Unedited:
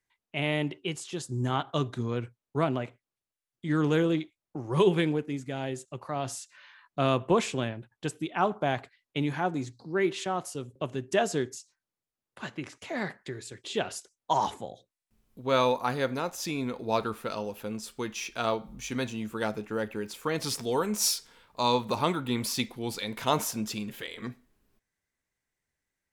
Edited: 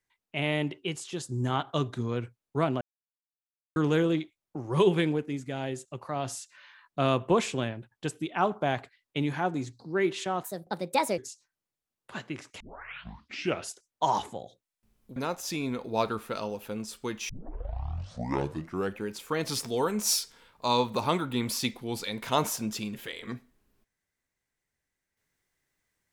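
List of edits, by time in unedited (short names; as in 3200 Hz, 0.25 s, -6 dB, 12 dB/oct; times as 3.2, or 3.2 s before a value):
2.81–3.76 mute
10.43–11.46 speed 137%
12.88 tape start 1.07 s
15.44–16.11 cut
18.24 tape start 1.75 s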